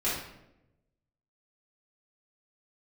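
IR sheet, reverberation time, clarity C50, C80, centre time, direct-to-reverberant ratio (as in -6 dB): 0.90 s, 1.5 dB, 5.5 dB, 54 ms, -11.0 dB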